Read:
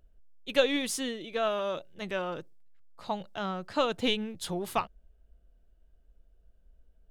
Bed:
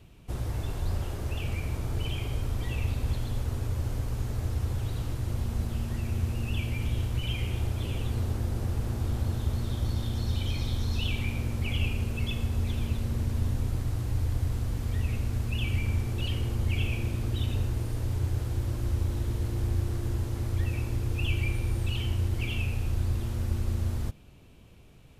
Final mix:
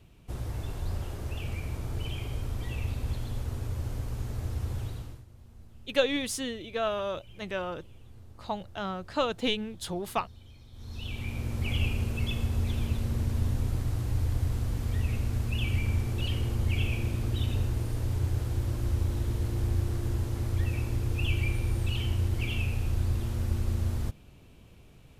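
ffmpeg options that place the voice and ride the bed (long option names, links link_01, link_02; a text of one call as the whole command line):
ffmpeg -i stem1.wav -i stem2.wav -filter_complex "[0:a]adelay=5400,volume=-0.5dB[link_01];[1:a]volume=19dB,afade=type=out:start_time=4.81:duration=0.44:silence=0.112202,afade=type=in:start_time=10.72:duration=0.99:silence=0.0794328[link_02];[link_01][link_02]amix=inputs=2:normalize=0" out.wav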